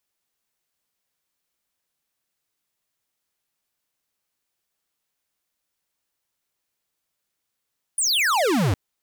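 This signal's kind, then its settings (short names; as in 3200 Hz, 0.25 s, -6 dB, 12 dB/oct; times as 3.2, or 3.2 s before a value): laser zap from 10000 Hz, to 84 Hz, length 0.76 s square, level -20 dB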